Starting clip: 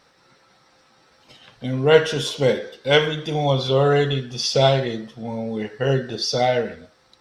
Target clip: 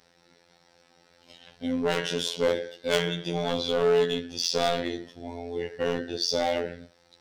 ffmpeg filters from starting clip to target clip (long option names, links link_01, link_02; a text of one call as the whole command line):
ffmpeg -i in.wav -af "equalizer=frequency=1200:width=3.5:gain=-9.5,volume=16.5dB,asoftclip=hard,volume=-16.5dB,afftfilt=real='hypot(re,im)*cos(PI*b)':imag='0':win_size=2048:overlap=0.75" out.wav